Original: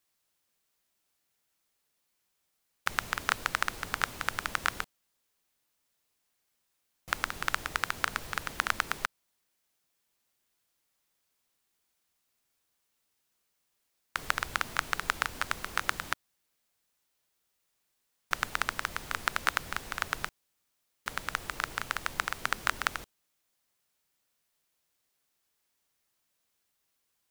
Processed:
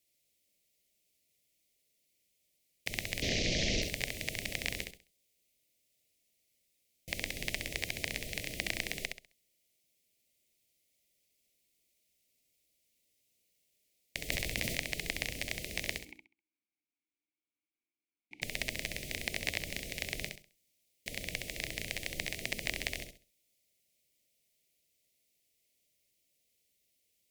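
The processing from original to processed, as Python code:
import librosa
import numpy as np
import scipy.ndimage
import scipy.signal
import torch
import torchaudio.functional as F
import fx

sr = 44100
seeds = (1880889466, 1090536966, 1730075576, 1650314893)

y = fx.delta_mod(x, sr, bps=32000, step_db=-25.5, at=(3.22, 3.82))
y = scipy.signal.sosfilt(scipy.signal.ellip(3, 1.0, 50, [640.0, 2100.0], 'bandstop', fs=sr, output='sos'), y)
y = fx.tube_stage(y, sr, drive_db=15.0, bias=0.3)
y = fx.vowel_filter(y, sr, vowel='u', at=(15.98, 18.42))
y = fx.echo_feedback(y, sr, ms=66, feedback_pct=29, wet_db=-5.5)
y = fx.sustainer(y, sr, db_per_s=27.0, at=(14.24, 14.81))
y = y * librosa.db_to_amplitude(2.0)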